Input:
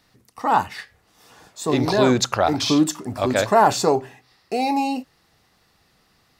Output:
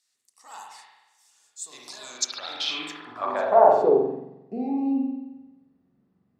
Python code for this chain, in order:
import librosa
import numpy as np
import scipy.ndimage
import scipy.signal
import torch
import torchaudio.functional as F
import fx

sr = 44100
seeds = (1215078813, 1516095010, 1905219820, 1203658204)

y = fx.rev_spring(x, sr, rt60_s=1.1, pass_ms=(44,), chirp_ms=30, drr_db=-1.5)
y = fx.filter_sweep_bandpass(y, sr, from_hz=7700.0, to_hz=210.0, start_s=2.09, end_s=4.31, q=2.7)